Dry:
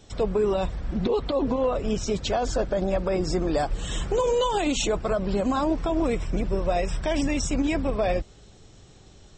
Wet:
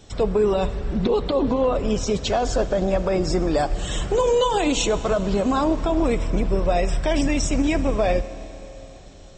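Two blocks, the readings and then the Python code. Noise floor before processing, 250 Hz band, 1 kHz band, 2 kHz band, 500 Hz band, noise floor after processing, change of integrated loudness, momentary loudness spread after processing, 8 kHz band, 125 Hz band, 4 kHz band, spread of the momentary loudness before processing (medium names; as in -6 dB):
-51 dBFS, +3.5 dB, +3.5 dB, +3.5 dB, +4.0 dB, -42 dBFS, +4.0 dB, 5 LU, +3.5 dB, +4.0 dB, +3.5 dB, 4 LU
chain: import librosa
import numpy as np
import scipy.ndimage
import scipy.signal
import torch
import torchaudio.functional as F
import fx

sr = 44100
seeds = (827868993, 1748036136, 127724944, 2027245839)

y = fx.rev_schroeder(x, sr, rt60_s=3.7, comb_ms=26, drr_db=13.5)
y = y * librosa.db_to_amplitude(3.5)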